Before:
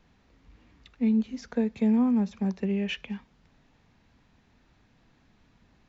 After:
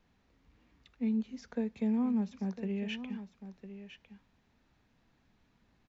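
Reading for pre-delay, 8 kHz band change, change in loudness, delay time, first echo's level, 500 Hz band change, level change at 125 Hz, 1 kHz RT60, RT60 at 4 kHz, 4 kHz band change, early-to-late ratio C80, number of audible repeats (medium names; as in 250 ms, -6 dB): no reverb, no reading, -7.0 dB, 1005 ms, -12.0 dB, -7.5 dB, no reading, no reverb, no reverb, -7.0 dB, no reverb, 1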